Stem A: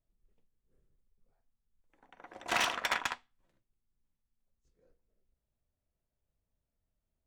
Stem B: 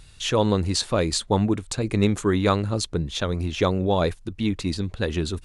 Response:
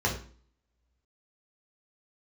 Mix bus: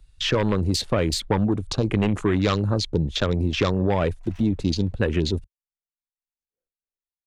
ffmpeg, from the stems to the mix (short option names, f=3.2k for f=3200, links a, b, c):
-filter_complex "[0:a]lowshelf=f=490:g=-9.5,tremolo=f=3.3:d=0.44,adelay=1750,volume=-2dB[a];[1:a]agate=range=-7dB:threshold=-43dB:ratio=16:detection=peak,aeval=exprs='0.531*sin(PI/2*2.51*val(0)/0.531)':c=same,volume=-5dB,asplit=2[b][c];[c]apad=whole_len=397557[d];[a][d]sidechaincompress=threshold=-23dB:ratio=8:attack=16:release=148[e];[e][b]amix=inputs=2:normalize=0,afwtdn=0.0316,acrossover=split=100|2300|4900[f][g][h][i];[f]acompressor=threshold=-29dB:ratio=4[j];[g]acompressor=threshold=-19dB:ratio=4[k];[h]acompressor=threshold=-30dB:ratio=4[l];[i]acompressor=threshold=-34dB:ratio=4[m];[j][k][l][m]amix=inputs=4:normalize=0"